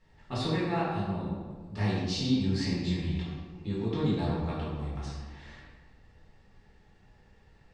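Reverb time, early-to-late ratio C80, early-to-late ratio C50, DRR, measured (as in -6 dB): 1.6 s, 1.5 dB, -1.0 dB, -8.5 dB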